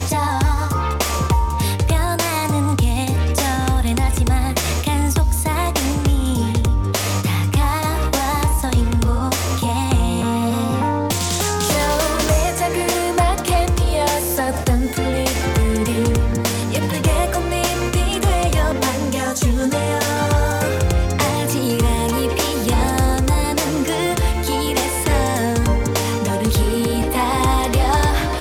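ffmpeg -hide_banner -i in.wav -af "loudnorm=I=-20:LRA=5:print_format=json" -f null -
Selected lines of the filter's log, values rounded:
"input_i" : "-18.7",
"input_tp" : "-7.7",
"input_lra" : "0.7",
"input_thresh" : "-28.7",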